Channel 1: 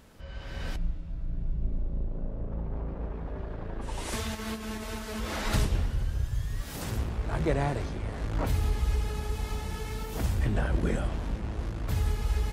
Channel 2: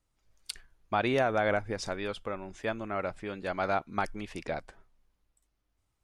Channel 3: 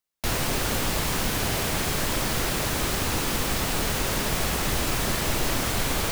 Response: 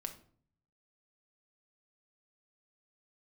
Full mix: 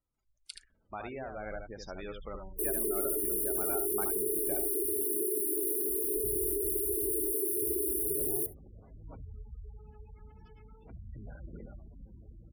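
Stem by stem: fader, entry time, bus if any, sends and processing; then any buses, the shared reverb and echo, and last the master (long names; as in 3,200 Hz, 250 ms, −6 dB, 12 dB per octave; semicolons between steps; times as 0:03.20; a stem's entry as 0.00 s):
−19.5 dB, 0.70 s, send −15.5 dB, echo send −15.5 dB, high shelf with overshoot 7,700 Hz −9 dB, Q 1.5; notch filter 1,800 Hz, Q 18; pitch vibrato 2.2 Hz 11 cents
−12.5 dB, 0.00 s, send −10.5 dB, echo send −4 dB, low-shelf EQ 79 Hz −4.5 dB; speech leveller within 4 dB 0.5 s
+0.5 dB, 2.35 s, no send, echo send −19 dB, high-pass filter 350 Hz 24 dB per octave; brick-wall band-stop 450–9,500 Hz; comb filter 2.2 ms, depth 84%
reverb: on, RT60 0.50 s, pre-delay 5 ms
echo: single-tap delay 75 ms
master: gate on every frequency bin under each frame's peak −20 dB strong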